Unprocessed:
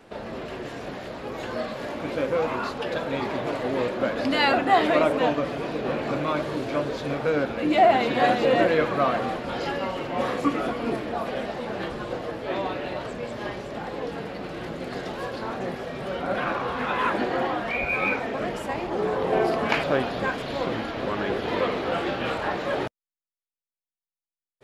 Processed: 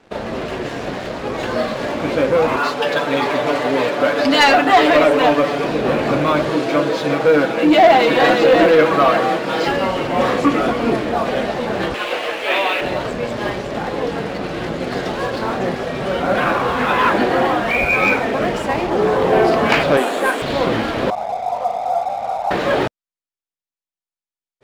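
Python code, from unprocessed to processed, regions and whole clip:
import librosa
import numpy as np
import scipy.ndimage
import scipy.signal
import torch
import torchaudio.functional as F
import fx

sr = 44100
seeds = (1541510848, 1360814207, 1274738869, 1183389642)

y = fx.chain(x, sr, fx.highpass(hz=360.0, slope=6),
    fx.comb(ms=6.9, depth=0.71), at=(2.56, 5.64))
y = fx.chain(y, sr, fx.highpass(hz=200.0, slope=12),
    fx.comb(ms=6.2, depth=0.56), at=(6.5, 9.68))
y = fx.chain(y, sr, fx.highpass(hz=470.0, slope=12),
    fx.peak_eq(hz=2600.0, db=12.5, octaves=0.95), at=(11.94, 12.81))
y = fx.chain(y, sr, fx.highpass(hz=270.0, slope=24),
    fx.notch(hz=4900.0, q=12.0),
    fx.resample_bad(factor=4, down='none', up='hold'), at=(19.97, 20.42))
y = fx.chain(y, sr, fx.comb(ms=1.4, depth=0.98),
    fx.leveller(passes=1),
    fx.formant_cascade(vowel='a'), at=(21.1, 22.51))
y = scipy.signal.sosfilt(scipy.signal.butter(2, 8500.0, 'lowpass', fs=sr, output='sos'), y)
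y = fx.leveller(y, sr, passes=2)
y = F.gain(torch.from_numpy(y), 2.5).numpy()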